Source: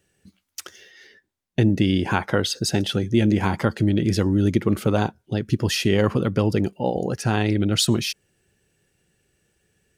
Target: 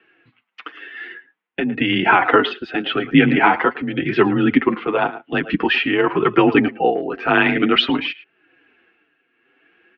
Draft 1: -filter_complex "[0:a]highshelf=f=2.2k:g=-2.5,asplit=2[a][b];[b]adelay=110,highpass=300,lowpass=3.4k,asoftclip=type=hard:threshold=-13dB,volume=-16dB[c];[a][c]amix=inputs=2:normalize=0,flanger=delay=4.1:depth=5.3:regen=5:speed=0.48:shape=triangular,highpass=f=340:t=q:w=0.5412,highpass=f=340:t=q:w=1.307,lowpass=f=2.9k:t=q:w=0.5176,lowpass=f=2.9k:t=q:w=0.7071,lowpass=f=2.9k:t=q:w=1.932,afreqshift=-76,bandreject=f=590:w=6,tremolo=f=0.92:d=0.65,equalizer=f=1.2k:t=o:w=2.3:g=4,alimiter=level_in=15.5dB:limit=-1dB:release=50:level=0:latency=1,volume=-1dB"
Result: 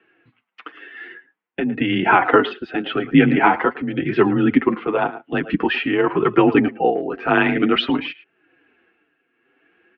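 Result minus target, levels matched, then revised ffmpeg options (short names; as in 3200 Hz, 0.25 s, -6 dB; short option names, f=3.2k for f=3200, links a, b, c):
4000 Hz band -4.0 dB
-filter_complex "[0:a]highshelf=f=2.2k:g=5.5,asplit=2[a][b];[b]adelay=110,highpass=300,lowpass=3.4k,asoftclip=type=hard:threshold=-13dB,volume=-16dB[c];[a][c]amix=inputs=2:normalize=0,flanger=delay=4.1:depth=5.3:regen=5:speed=0.48:shape=triangular,highpass=f=340:t=q:w=0.5412,highpass=f=340:t=q:w=1.307,lowpass=f=2.9k:t=q:w=0.5176,lowpass=f=2.9k:t=q:w=0.7071,lowpass=f=2.9k:t=q:w=1.932,afreqshift=-76,bandreject=f=590:w=6,tremolo=f=0.92:d=0.65,equalizer=f=1.2k:t=o:w=2.3:g=4,alimiter=level_in=15.5dB:limit=-1dB:release=50:level=0:latency=1,volume=-1dB"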